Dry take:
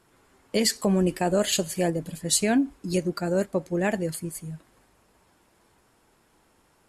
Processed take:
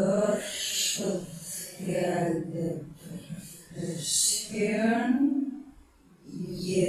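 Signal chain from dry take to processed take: Paulstretch 4.2×, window 0.05 s, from 1.34; pre-echo 0.289 s -23 dB; gain -4.5 dB

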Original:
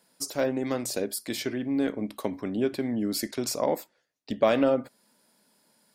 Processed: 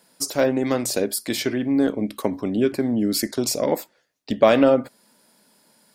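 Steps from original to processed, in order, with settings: 1.72–3.73 LFO notch saw down 2 Hz 620–4000 Hz; gain +7 dB

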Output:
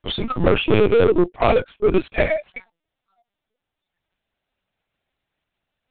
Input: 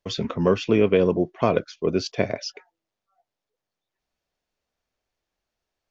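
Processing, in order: switching dead time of 0.089 ms; spectral noise reduction 10 dB; high shelf 2200 Hz +9 dB; in parallel at -1.5 dB: limiter -12 dBFS, peak gain reduction 6.5 dB; 1.36–2.49 on the sum: low-pass opened by the level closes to 1100 Hz, open at -12.5 dBFS; soft clip -18.5 dBFS, distortion -7 dB; LPC vocoder at 8 kHz pitch kept; gain +7.5 dB

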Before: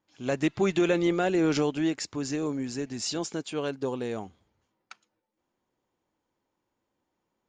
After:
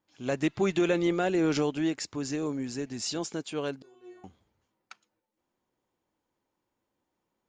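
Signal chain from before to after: 3.82–4.24 metallic resonator 360 Hz, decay 0.63 s, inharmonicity 0.002; gain -1.5 dB

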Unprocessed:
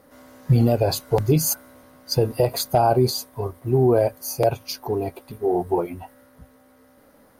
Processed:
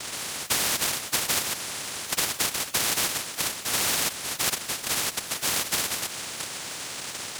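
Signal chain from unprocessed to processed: high shelf 5100 Hz -9.5 dB; noise vocoder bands 1; bit-crush 11-bit; spectral compressor 4:1; gain -8 dB

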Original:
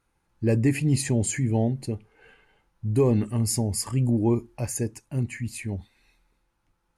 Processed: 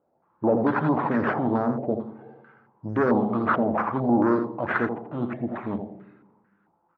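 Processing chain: in parallel at -1 dB: limiter -20 dBFS, peak gain reduction 8.5 dB; on the sum: dynamic EQ 270 Hz, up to +5 dB, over -33 dBFS, Q 1.8; decimation with a swept rate 10×, swing 60% 1.6 Hz; air absorption 100 m; tube stage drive 18 dB, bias 0.55; HPF 190 Hz 12 dB/oct; feedback echo 83 ms, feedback 31%, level -8 dB; on a send at -14 dB: reverb RT60 1.2 s, pre-delay 3 ms; on the sum: stepped low-pass 4.5 Hz 660–1600 Hz

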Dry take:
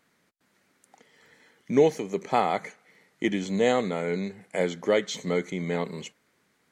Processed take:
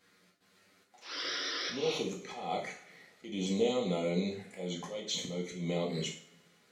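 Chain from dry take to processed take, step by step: bell 4100 Hz +5.5 dB 1.2 oct; notch 950 Hz, Q 12; compressor 10:1, threshold -29 dBFS, peak gain reduction 15.5 dB; painted sound noise, 1–1.98, 270–5900 Hz -37 dBFS; envelope flanger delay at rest 11.3 ms, full sweep at -31.5 dBFS; auto swell 0.199 s; two-slope reverb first 0.46 s, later 2.1 s, from -26 dB, DRR -2 dB

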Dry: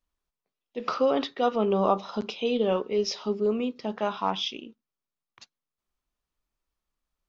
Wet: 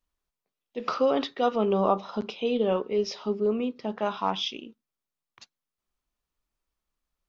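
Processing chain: 1.81–4.06 high shelf 4400 Hz -8 dB

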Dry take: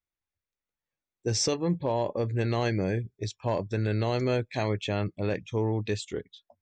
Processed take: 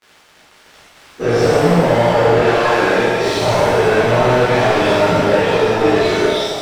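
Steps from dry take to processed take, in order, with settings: spectral dilation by 0.12 s; 2.36–3.26 Bessel high-pass 320 Hz, order 2; treble ducked by the level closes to 1800 Hz, closed at -21.5 dBFS; crackle 42/s -37 dBFS; overdrive pedal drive 30 dB, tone 2100 Hz, clips at -12.5 dBFS; shimmer reverb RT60 1.5 s, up +7 st, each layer -8 dB, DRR -11.5 dB; gain -6.5 dB

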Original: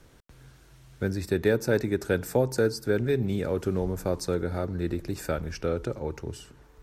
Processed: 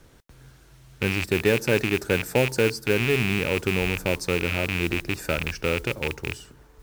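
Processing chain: rattling part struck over -34 dBFS, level -16 dBFS; modulation noise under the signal 20 dB; gain +2 dB

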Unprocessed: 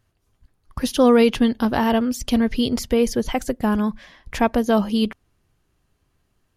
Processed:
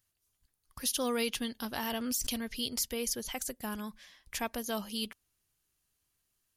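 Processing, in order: pre-emphasis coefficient 0.9; 1.83–2.38 backwards sustainer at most 34 dB/s

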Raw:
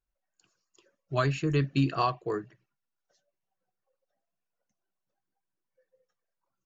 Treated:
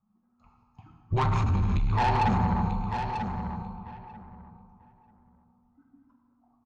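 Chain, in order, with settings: resonant low shelf 540 Hz +10 dB, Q 1.5; compressor, threshold -17 dBFS, peak gain reduction 8.5 dB; plate-style reverb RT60 1.8 s, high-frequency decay 0.85×, DRR 0.5 dB; frequency shift -240 Hz; limiter -19 dBFS, peak gain reduction 12.5 dB; band shelf 920 Hz +13.5 dB 1.1 oct; soft clip -24.5 dBFS, distortion -11 dB; on a send: feedback echo 0.941 s, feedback 18%, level -7.5 dB; on the sum: low-pass opened by the level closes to 1500 Hz, open at -31 dBFS; gain +4 dB

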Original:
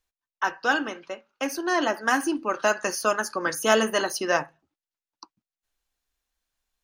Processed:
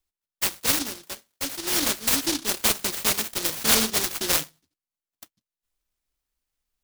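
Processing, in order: 1.07–1.76 low shelf 250 Hz -11 dB; noise-modulated delay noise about 4500 Hz, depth 0.49 ms

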